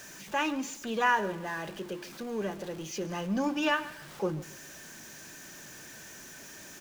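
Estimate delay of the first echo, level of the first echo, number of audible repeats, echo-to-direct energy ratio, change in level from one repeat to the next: 0.139 s, -18.5 dB, 2, -18.0 dB, -9.5 dB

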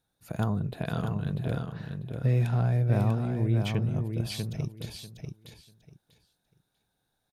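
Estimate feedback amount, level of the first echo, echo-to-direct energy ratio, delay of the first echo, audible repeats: 20%, -5.5 dB, -5.5 dB, 0.643 s, 3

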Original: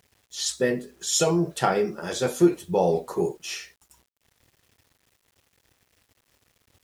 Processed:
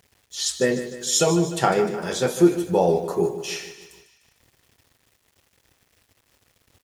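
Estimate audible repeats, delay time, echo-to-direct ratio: 5, 0.151 s, -10.5 dB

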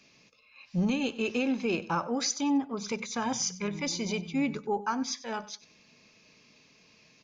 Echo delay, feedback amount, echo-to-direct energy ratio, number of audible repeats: 95 ms, 26%, -17.5 dB, 2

